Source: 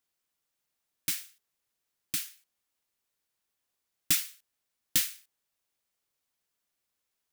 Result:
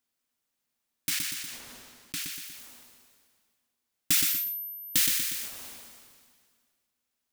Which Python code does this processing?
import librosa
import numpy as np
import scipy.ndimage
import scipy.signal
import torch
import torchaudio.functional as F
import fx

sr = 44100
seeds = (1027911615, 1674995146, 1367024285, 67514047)

p1 = fx.high_shelf(x, sr, hz=7800.0, db=-9.0, at=(1.1, 2.24))
p2 = p1 + fx.echo_feedback(p1, sr, ms=120, feedback_pct=19, wet_db=-8.5, dry=0)
p3 = fx.dmg_tone(p2, sr, hz=13000.0, level_db=-39.0, at=(4.22, 4.98), fade=0.02)
p4 = fx.peak_eq(p3, sr, hz=240.0, db=11.0, octaves=0.24)
y = fx.sustainer(p4, sr, db_per_s=31.0)